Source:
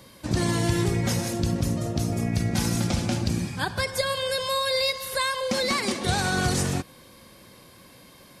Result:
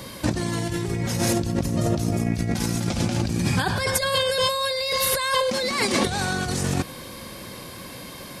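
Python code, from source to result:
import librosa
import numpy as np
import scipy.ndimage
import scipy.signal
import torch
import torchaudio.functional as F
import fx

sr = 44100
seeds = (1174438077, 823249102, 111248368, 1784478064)

y = fx.over_compress(x, sr, threshold_db=-31.0, ratio=-1.0)
y = y * librosa.db_to_amplitude(7.0)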